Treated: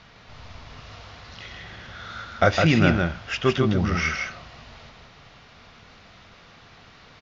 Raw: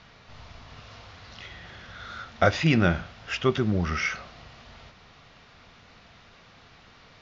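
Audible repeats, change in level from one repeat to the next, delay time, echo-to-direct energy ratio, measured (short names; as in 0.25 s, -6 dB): 1, no steady repeat, 0.158 s, -4.0 dB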